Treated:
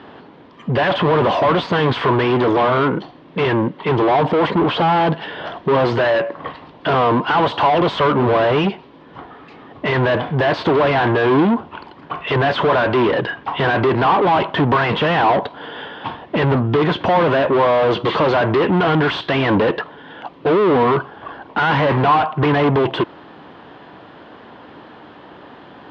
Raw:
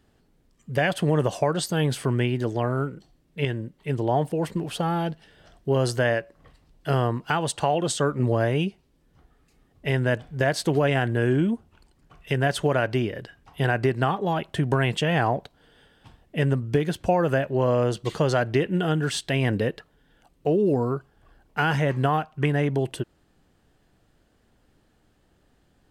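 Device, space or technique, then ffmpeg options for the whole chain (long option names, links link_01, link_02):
overdrive pedal into a guitar cabinet: -filter_complex "[0:a]asplit=2[link_01][link_02];[link_02]highpass=frequency=720:poles=1,volume=38dB,asoftclip=type=tanh:threshold=-8dB[link_03];[link_01][link_03]amix=inputs=2:normalize=0,lowpass=frequency=1100:poles=1,volume=-6dB,highpass=83,equalizer=frequency=290:width_type=q:width=4:gain=3,equalizer=frequency=1000:width_type=q:width=4:gain=8,equalizer=frequency=3300:width_type=q:width=4:gain=4,lowpass=frequency=4100:width=0.5412,lowpass=frequency=4100:width=1.3066"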